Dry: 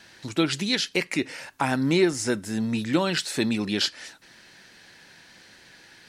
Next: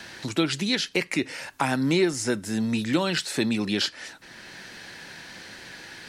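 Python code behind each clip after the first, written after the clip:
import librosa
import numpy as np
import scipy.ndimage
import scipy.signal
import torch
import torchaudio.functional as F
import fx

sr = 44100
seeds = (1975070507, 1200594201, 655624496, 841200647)

y = fx.band_squash(x, sr, depth_pct=40)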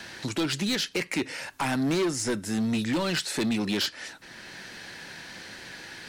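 y = np.clip(10.0 ** (22.5 / 20.0) * x, -1.0, 1.0) / 10.0 ** (22.5 / 20.0)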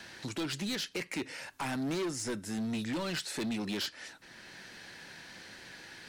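y = np.clip(x, -10.0 ** (-24.0 / 20.0), 10.0 ** (-24.0 / 20.0))
y = y * 10.0 ** (-7.0 / 20.0)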